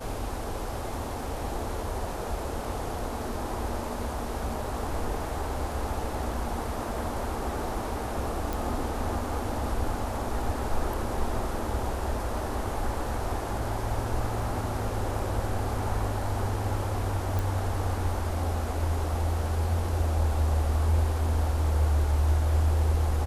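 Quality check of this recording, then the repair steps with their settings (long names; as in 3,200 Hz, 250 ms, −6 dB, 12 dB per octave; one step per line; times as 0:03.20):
0:08.53: click
0:17.39: click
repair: click removal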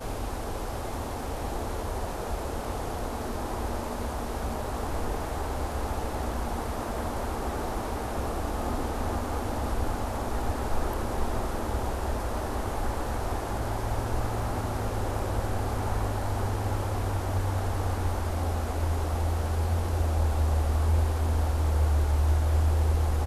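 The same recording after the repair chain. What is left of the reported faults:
none of them is left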